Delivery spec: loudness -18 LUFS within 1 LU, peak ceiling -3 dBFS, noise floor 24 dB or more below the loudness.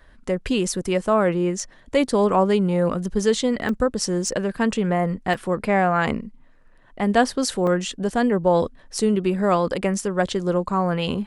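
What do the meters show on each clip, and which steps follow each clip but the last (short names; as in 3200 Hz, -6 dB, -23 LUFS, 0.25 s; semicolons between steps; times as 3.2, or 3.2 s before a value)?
dropouts 4; longest dropout 2.2 ms; loudness -22.0 LUFS; peak -4.0 dBFS; loudness target -18.0 LUFS
-> interpolate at 3.69/4.28/5.34/7.67, 2.2 ms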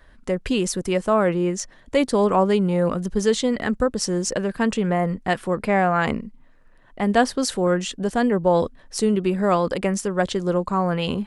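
dropouts 0; loudness -22.0 LUFS; peak -4.0 dBFS; loudness target -18.0 LUFS
-> gain +4 dB; limiter -3 dBFS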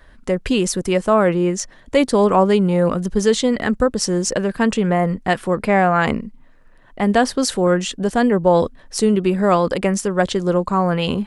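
loudness -18.0 LUFS; peak -3.0 dBFS; noise floor -48 dBFS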